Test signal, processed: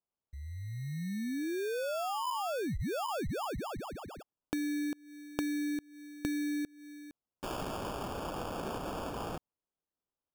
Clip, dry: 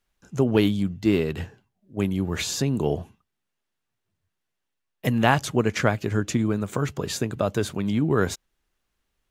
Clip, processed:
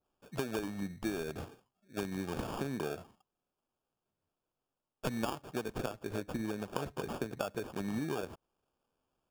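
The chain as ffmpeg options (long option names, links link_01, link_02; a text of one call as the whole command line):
ffmpeg -i in.wav -af "lowpass=2100,aemphasis=mode=production:type=riaa,acompressor=threshold=-32dB:ratio=16,acrusher=samples=22:mix=1:aa=0.000001,adynamicequalizer=threshold=0.00282:dfrequency=1600:dqfactor=0.7:tfrequency=1600:tqfactor=0.7:attack=5:release=100:ratio=0.375:range=2.5:mode=cutabove:tftype=highshelf" out.wav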